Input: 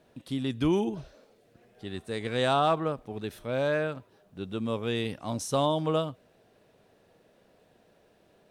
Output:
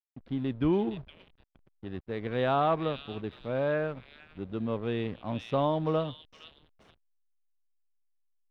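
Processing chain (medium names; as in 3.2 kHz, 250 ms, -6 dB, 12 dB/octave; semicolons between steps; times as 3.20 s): repeats whose band climbs or falls 466 ms, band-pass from 3.4 kHz, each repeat 0.7 oct, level -1 dB; hysteresis with a dead band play -38.5 dBFS; distance through air 360 m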